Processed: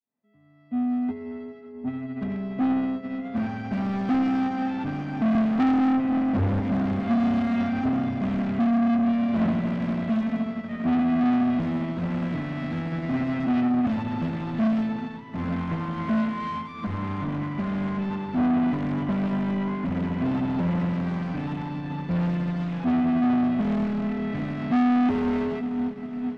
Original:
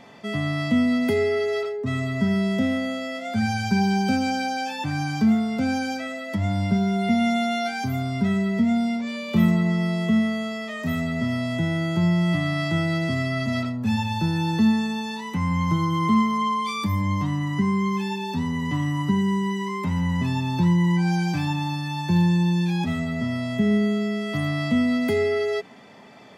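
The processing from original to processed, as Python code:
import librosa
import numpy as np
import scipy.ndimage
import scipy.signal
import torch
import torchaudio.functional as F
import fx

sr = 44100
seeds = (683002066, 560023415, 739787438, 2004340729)

p1 = fx.fade_in_head(x, sr, length_s=4.27)
p2 = fx.tilt_eq(p1, sr, slope=-3.0, at=(5.35, 6.6))
p3 = (np.mod(10.0 ** (20.0 / 20.0) * p2 + 1.0, 2.0) - 1.0) / 10.0 ** (20.0 / 20.0)
p4 = p2 + (p3 * librosa.db_to_amplitude(-6.0))
p5 = scipy.signal.sosfilt(scipy.signal.butter(2, 2000.0, 'lowpass', fs=sr, output='sos'), p4)
p6 = fx.peak_eq(p5, sr, hz=250.0, db=13.5, octaves=0.27)
p7 = p6 + fx.echo_diffused(p6, sr, ms=471, feedback_pct=78, wet_db=-10.5, dry=0)
p8 = 10.0 ** (-18.5 / 20.0) * np.tanh(p7 / 10.0 ** (-18.5 / 20.0))
y = fx.upward_expand(p8, sr, threshold_db=-31.0, expansion=2.5)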